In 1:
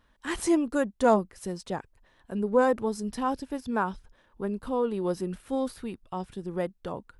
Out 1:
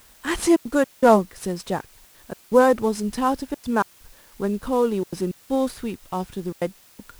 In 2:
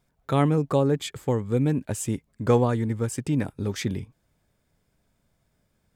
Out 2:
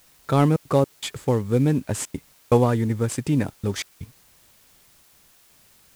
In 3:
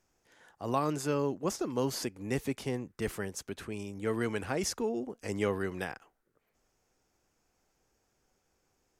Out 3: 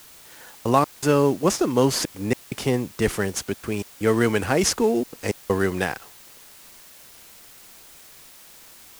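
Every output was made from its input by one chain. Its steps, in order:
variable-slope delta modulation 64 kbit/s
gate pattern "xxxxxx.xx..xxxxx" 161 BPM −60 dB
in parallel at −9 dB: bit-depth reduction 8 bits, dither triangular
on the sum: loudness normalisation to −23 LKFS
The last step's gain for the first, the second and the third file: +4.0, +0.5, +9.5 decibels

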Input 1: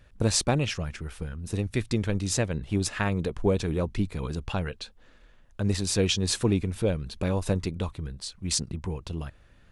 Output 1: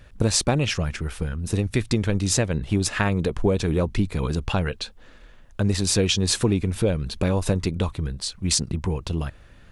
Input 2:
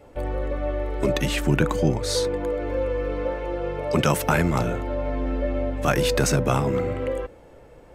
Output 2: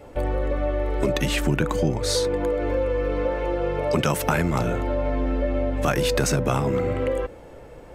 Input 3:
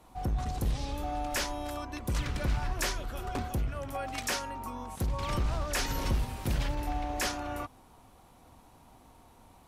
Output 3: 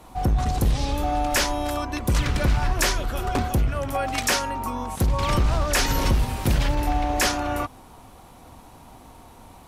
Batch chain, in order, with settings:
downward compressor 2.5 to 1, threshold −26 dBFS
loudness normalisation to −24 LKFS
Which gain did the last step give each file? +7.5, +5.0, +10.5 decibels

